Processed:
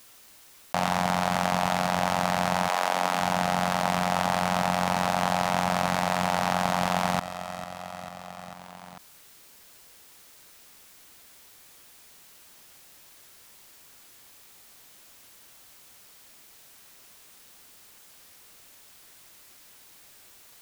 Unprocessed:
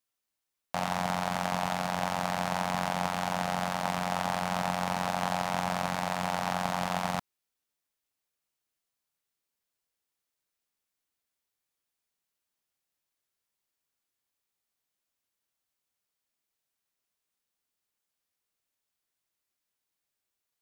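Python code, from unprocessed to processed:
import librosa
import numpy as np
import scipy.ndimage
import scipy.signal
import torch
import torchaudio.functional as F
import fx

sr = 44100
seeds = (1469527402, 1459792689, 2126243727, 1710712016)

y = fx.highpass(x, sr, hz=fx.line((2.67, 420.0), (3.19, 190.0)), slope=24, at=(2.67, 3.19), fade=0.02)
y = fx.echo_feedback(y, sr, ms=446, feedback_pct=52, wet_db=-22.0)
y = fx.env_flatten(y, sr, amount_pct=50)
y = F.gain(torch.from_numpy(y), 4.0).numpy()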